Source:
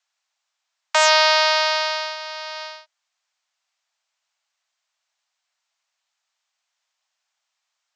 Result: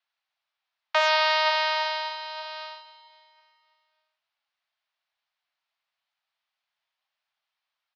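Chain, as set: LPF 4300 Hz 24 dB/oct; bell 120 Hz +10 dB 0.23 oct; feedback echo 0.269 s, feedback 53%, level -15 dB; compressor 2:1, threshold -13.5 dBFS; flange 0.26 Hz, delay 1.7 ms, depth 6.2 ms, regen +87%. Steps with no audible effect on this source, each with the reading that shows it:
bell 120 Hz: input band starts at 600 Hz

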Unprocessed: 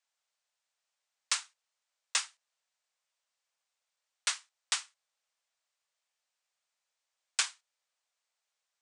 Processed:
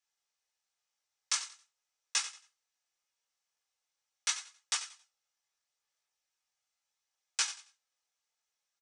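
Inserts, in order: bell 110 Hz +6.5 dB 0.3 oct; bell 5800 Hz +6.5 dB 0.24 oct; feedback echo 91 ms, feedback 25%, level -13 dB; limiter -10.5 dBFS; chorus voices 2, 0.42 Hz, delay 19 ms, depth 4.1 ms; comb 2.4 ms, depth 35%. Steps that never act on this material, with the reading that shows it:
bell 110 Hz: input band starts at 380 Hz; limiter -10.5 dBFS: input peak -12.5 dBFS

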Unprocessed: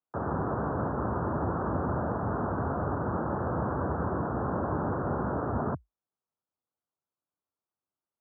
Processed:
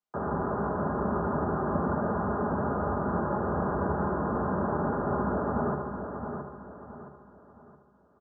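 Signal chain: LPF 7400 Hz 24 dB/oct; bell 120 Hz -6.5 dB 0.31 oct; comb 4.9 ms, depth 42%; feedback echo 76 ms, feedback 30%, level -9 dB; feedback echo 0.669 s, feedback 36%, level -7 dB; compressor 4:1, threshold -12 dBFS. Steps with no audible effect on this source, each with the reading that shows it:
LPF 7400 Hz: input band ends at 1700 Hz; compressor, threshold -12 dBFS: input peak -16.0 dBFS

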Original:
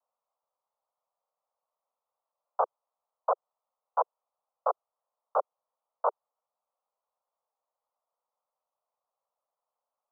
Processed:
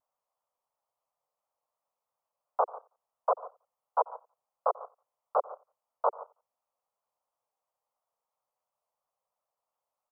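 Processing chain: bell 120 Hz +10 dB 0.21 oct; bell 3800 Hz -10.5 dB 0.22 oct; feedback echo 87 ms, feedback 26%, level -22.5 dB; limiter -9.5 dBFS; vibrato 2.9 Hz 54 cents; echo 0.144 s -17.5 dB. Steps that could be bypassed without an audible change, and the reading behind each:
bell 120 Hz: input band starts at 360 Hz; bell 3800 Hz: input band ends at 1600 Hz; limiter -9.5 dBFS: input peak -12.0 dBFS

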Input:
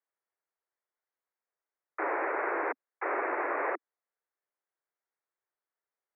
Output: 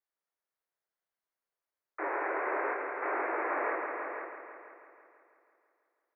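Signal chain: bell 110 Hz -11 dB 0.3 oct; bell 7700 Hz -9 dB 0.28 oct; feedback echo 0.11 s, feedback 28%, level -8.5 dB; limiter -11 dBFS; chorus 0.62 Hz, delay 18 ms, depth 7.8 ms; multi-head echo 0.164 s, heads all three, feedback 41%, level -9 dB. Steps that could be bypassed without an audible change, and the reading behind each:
bell 110 Hz: input band starts at 240 Hz; bell 7700 Hz: input band ends at 2700 Hz; limiter -11 dBFS: input peak -18.5 dBFS

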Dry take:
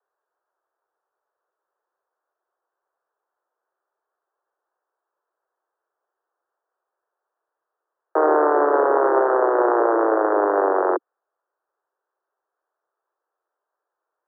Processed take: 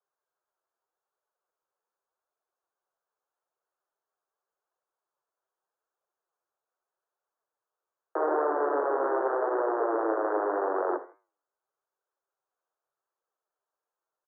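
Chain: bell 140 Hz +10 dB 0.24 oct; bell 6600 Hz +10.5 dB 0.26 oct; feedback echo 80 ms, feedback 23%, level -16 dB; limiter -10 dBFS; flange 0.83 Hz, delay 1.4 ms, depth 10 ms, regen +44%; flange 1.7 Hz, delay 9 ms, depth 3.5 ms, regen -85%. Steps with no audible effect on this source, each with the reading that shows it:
bell 140 Hz: input band starts at 250 Hz; bell 6600 Hz: input band ends at 1800 Hz

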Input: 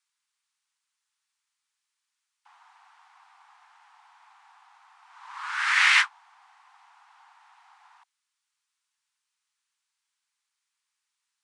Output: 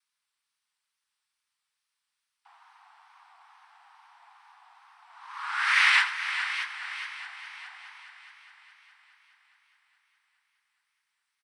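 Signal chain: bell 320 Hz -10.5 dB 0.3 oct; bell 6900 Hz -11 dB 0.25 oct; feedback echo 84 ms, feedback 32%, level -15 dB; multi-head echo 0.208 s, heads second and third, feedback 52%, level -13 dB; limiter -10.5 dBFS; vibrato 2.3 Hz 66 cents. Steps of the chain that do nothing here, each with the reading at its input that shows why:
bell 320 Hz: input band starts at 720 Hz

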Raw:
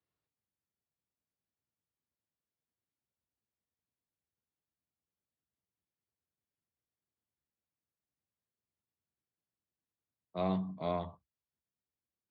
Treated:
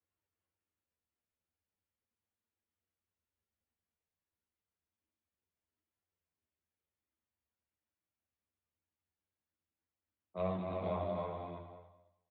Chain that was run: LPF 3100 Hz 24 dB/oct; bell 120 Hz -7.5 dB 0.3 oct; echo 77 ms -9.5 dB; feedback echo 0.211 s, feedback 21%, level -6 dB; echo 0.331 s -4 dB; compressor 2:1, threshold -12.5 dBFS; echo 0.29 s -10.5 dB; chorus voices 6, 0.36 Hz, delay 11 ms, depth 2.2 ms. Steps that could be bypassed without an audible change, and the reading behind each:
compressor, threshold -12.5 dBFS: input peak -20.5 dBFS

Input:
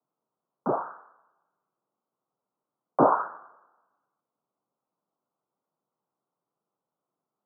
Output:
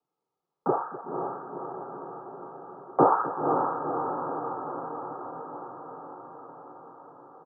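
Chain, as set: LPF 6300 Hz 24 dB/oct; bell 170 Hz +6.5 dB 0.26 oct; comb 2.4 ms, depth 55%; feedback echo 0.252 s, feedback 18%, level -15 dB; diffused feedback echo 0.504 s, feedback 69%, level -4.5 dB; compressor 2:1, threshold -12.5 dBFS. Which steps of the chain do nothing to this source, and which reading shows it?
LPF 6300 Hz: input band ends at 1600 Hz

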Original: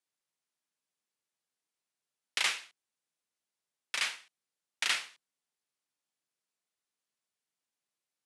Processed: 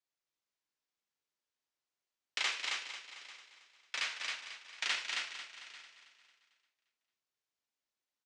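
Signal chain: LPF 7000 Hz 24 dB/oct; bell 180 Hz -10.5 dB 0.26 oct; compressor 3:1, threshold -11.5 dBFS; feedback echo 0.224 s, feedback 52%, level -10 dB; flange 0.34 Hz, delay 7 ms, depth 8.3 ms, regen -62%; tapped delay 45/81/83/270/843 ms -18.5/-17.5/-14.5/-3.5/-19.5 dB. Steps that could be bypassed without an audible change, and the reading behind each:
compressor, threshold -11.5 dBFS: input peak -15.5 dBFS

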